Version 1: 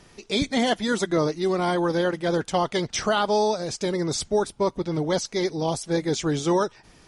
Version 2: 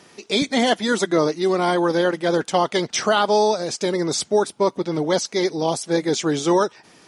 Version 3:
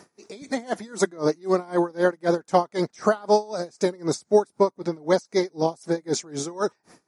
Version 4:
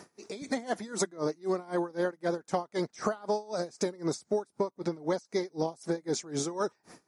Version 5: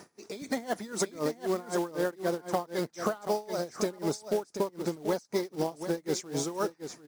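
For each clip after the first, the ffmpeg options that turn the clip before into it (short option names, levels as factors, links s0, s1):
-af "highpass=200,volume=1.68"
-af "equalizer=f=3100:w=1.9:g=-13.5,aeval=exprs='val(0)*pow(10,-27*(0.5-0.5*cos(2*PI*3.9*n/s))/20)':c=same,volume=1.26"
-af "acompressor=threshold=0.0447:ratio=6"
-af "acrusher=bits=4:mode=log:mix=0:aa=0.000001,aecho=1:1:734:0.335"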